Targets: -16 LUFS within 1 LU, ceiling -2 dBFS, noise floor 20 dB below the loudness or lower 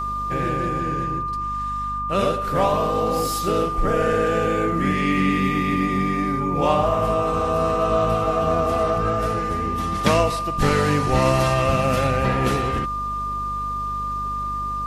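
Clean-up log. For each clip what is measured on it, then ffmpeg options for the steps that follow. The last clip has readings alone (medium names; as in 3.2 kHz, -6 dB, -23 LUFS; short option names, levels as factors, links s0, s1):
hum 50 Hz; highest harmonic 250 Hz; hum level -32 dBFS; steady tone 1.2 kHz; tone level -24 dBFS; loudness -21.5 LUFS; peak level -5.0 dBFS; loudness target -16.0 LUFS
-> -af "bandreject=f=50:t=h:w=4,bandreject=f=100:t=h:w=4,bandreject=f=150:t=h:w=4,bandreject=f=200:t=h:w=4,bandreject=f=250:t=h:w=4"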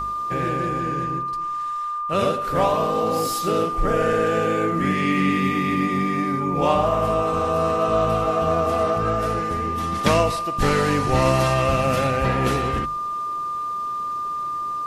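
hum not found; steady tone 1.2 kHz; tone level -24 dBFS
-> -af "bandreject=f=1200:w=30"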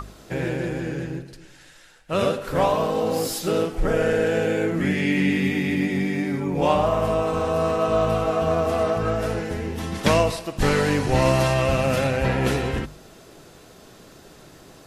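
steady tone not found; loudness -22.5 LUFS; peak level -6.0 dBFS; loudness target -16.0 LUFS
-> -af "volume=2.11,alimiter=limit=0.794:level=0:latency=1"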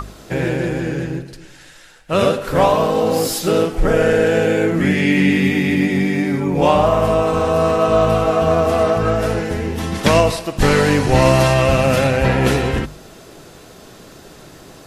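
loudness -16.5 LUFS; peak level -2.0 dBFS; noise floor -42 dBFS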